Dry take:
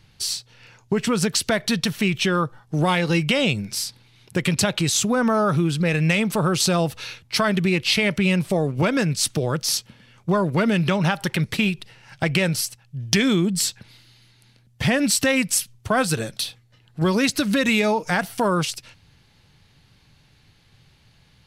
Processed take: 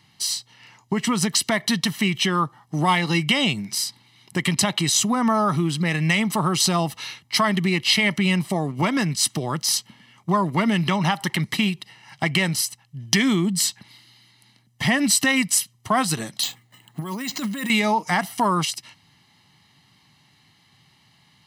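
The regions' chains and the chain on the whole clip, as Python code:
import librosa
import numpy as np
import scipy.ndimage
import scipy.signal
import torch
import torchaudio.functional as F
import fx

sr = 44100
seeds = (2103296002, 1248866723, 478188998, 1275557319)

y = fx.chain(x, sr, fx.over_compress(threshold_db=-27.0, ratio=-1.0),
    fx.bandpass_edges(low_hz=110.0, high_hz=5000.0),
    fx.resample_bad(factor=4, down='none', up='hold'), at=(16.43, 17.7))
y = scipy.signal.sosfilt(scipy.signal.butter(2, 200.0, 'highpass', fs=sr, output='sos'), y)
y = y + 0.68 * np.pad(y, (int(1.0 * sr / 1000.0), 0))[:len(y)]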